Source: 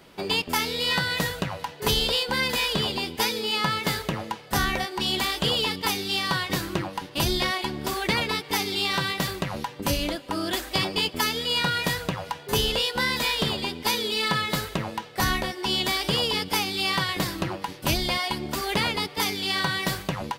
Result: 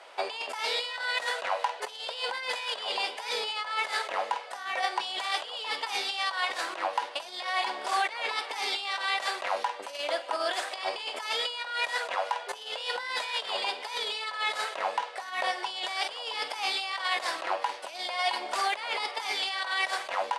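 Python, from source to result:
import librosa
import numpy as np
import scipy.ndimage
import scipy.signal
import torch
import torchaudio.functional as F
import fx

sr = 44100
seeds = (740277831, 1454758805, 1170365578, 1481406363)

y = fx.room_flutter(x, sr, wall_m=8.6, rt60_s=0.22)
y = fx.over_compress(y, sr, threshold_db=-29.0, ratio=-0.5)
y = scipy.signal.sosfilt(scipy.signal.ellip(3, 1.0, 80, [630.0, 9400.0], 'bandpass', fs=sr, output='sos'), y)
y = fx.high_shelf(y, sr, hz=2100.0, db=-9.5)
y = y * 10.0 ** (5.0 / 20.0)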